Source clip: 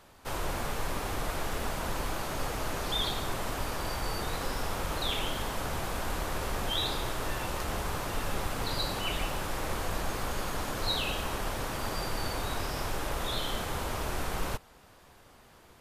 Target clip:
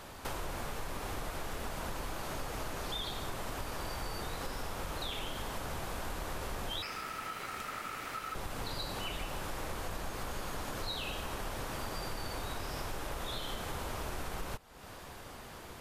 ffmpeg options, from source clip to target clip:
-filter_complex "[0:a]acompressor=threshold=0.00447:ratio=4,asettb=1/sr,asplit=3[s0][s1][s2];[s0]atrim=end=6.824[s3];[s1]atrim=start=6.82:end=8.35,asetpts=PTS-STARTPTS,afade=t=in:d=0.004:c=qsin,afade=t=out:st=1.526:d=0.004:c=qsin,aeval=exprs='val(0)*sin(2*PI*1300*n/s)':c=same[s4];[s2]atrim=start=8.346[s5];[s3][s4]acrossfade=d=0.004:c1=hsin:c2=qsin[s6];[s6][s5]acrossfade=d=0.004:c1=qsin:c2=hsin,volume=2.66"

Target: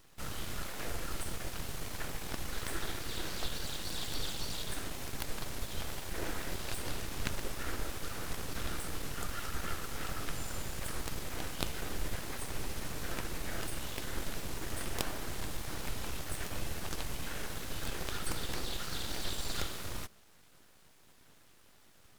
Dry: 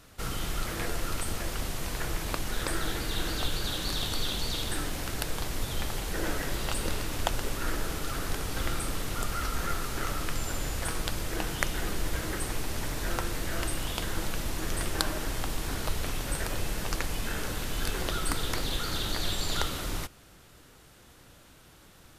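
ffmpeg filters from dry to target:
-filter_complex "[0:a]asplit=2[s0][s1];[s1]asetrate=55563,aresample=44100,atempo=0.793701,volume=0.447[s2];[s0][s2]amix=inputs=2:normalize=0,aeval=exprs='abs(val(0))':c=same,volume=0.501"

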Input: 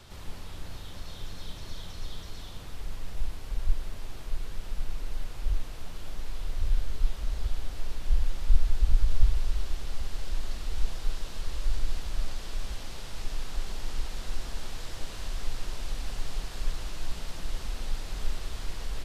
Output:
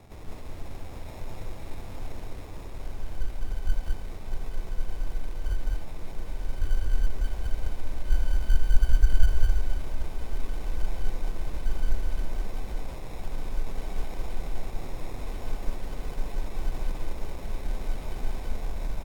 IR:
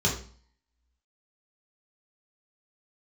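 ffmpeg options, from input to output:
-af "acrusher=samples=29:mix=1:aa=0.000001,aecho=1:1:174.9|207:0.282|0.794" -ar 48000 -c:a libvorbis -b:a 96k

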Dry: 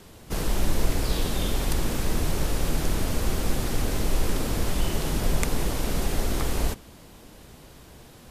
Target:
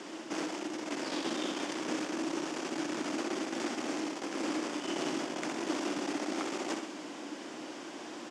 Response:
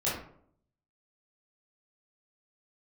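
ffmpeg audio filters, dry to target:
-af "areverse,acompressor=threshold=0.0355:ratio=6,areverse,asoftclip=type=tanh:threshold=0.0299,highpass=f=270:w=0.5412,highpass=f=270:w=1.3066,equalizer=f=310:t=q:w=4:g=9,equalizer=f=450:t=q:w=4:g=-7,equalizer=f=4000:t=q:w=4:g=-7,lowpass=f=6800:w=0.5412,lowpass=f=6800:w=1.3066,aecho=1:1:64|128|192|256|320|384|448:0.473|0.256|0.138|0.0745|0.0402|0.0217|0.0117,volume=2.24"

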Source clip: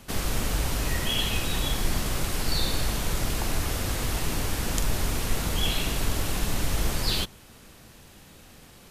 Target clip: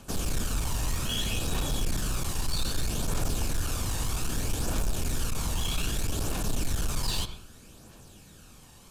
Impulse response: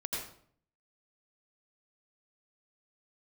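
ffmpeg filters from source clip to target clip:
-filter_complex "[0:a]volume=15,asoftclip=hard,volume=0.0668,equalizer=f=7400:t=o:w=1.1:g=6.5,bandreject=f=2000:w=5.5,asplit=2[s0][s1];[1:a]atrim=start_sample=2205,lowpass=3300[s2];[s1][s2]afir=irnorm=-1:irlink=0,volume=0.316[s3];[s0][s3]amix=inputs=2:normalize=0,aphaser=in_gain=1:out_gain=1:delay=1.1:decay=0.37:speed=0.63:type=triangular,volume=0.531"

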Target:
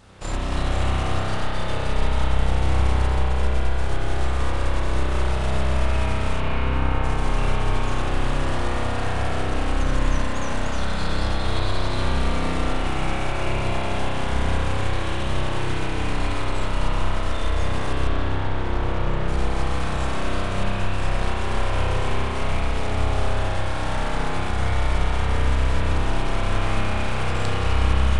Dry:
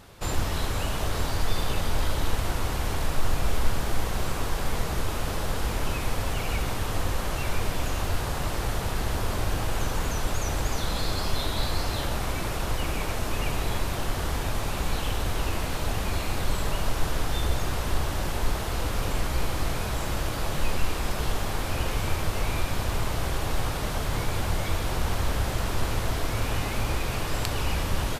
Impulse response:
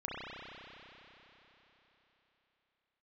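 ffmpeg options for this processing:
-filter_complex "[0:a]asettb=1/sr,asplit=3[s0][s1][s2];[s0]atrim=end=6.404[s3];[s1]atrim=start=6.4:end=7.04,asetpts=PTS-STARTPTS,afade=t=in:d=0.004:c=qsin,afade=t=out:st=0.636:d=0.004:c=qsin,acrossover=split=2900[s4][s5];[s5]acompressor=threshold=0.00224:ratio=4:attack=1:release=60[s6];[s4][s6]amix=inputs=2:normalize=0[s7];[s2]atrim=start=7.036[s8];[s3][s7]acrossfade=d=0.004:c1=hsin:c2=qsin[s9];[s9][s8]acrossfade=d=0.004:c1=qsin:c2=hsin,asettb=1/sr,asplit=3[s10][s11][s12];[s10]atrim=end=18.074[s13];[s11]atrim=start=18.07:end=19.28,asetpts=PTS-STARTPTS,afade=t=in:d=0.004:c=qsin,afade=t=out:st=1.206:d=0.004:c=qsin,aemphasis=mode=reproduction:type=75fm[s14];[s12]atrim=start=19.276[s15];[s13][s14]acrossfade=d=0.004:c1=hsin:c2=qsin[s16];[s16][s15]acrossfade=d=0.004:c1=qsin:c2=hsin,acompressor=threshold=0.0631:ratio=3,aeval=exprs='0.282*(cos(1*acos(clip(val(0)/0.282,-1,1)))-cos(1*PI/2))+0.0355*(cos(4*acos(clip(val(0)/0.282,-1,1)))-cos(4*PI/2))':c=same,aresample=22050,aresample=44100[s17];[1:a]atrim=start_sample=2205[s18];[s17][s18]afir=irnorm=-1:irlink=0,volume=1.19"

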